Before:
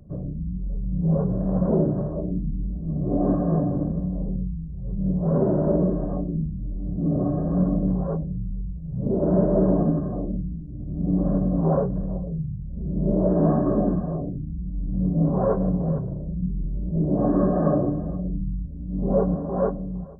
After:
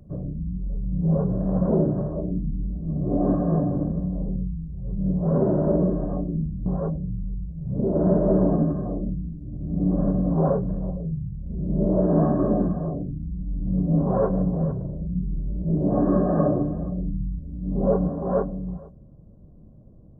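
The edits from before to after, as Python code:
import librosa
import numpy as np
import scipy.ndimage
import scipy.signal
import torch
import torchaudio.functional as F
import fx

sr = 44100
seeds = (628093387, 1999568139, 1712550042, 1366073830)

y = fx.edit(x, sr, fx.cut(start_s=6.66, length_s=1.27), tone=tone)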